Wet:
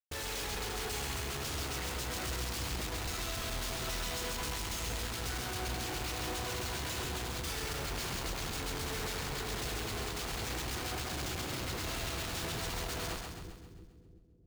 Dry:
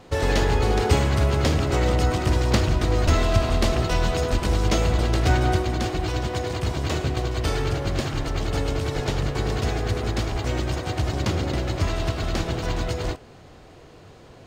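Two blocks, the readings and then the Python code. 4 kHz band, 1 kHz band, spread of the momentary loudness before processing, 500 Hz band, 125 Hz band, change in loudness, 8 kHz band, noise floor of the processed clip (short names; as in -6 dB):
-6.0 dB, -12.5 dB, 6 LU, -16.5 dB, -18.5 dB, -13.0 dB, -2.5 dB, -55 dBFS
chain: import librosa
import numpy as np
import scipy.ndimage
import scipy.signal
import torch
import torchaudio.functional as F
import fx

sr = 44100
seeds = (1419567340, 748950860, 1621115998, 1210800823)

y = librosa.effects.preemphasis(x, coef=0.9, zi=[0.0])
y = fx.schmitt(y, sr, flips_db=-46.0)
y = fx.notch(y, sr, hz=590.0, q=12.0)
y = fx.echo_split(y, sr, split_hz=380.0, low_ms=340, high_ms=133, feedback_pct=52, wet_db=-4.0)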